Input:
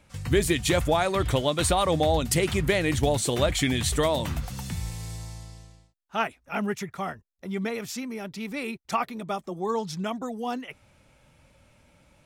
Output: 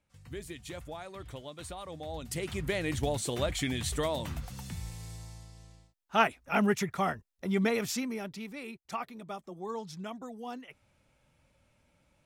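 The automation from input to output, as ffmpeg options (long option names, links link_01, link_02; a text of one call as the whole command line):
ffmpeg -i in.wav -af "volume=2dB,afade=type=in:start_time=2.01:duration=0.83:silence=0.251189,afade=type=in:start_time=5.53:duration=0.65:silence=0.334965,afade=type=out:start_time=7.83:duration=0.7:silence=0.251189" out.wav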